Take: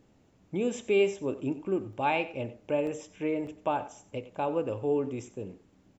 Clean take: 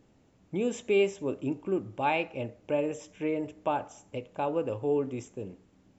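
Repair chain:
repair the gap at 0:01.93/0:02.87/0:03.47, 1.5 ms
echo removal 93 ms −16 dB

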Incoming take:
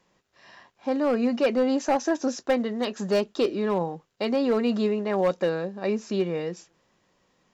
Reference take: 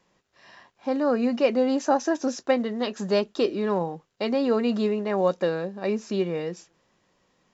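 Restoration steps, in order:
clipped peaks rebuilt −16 dBFS

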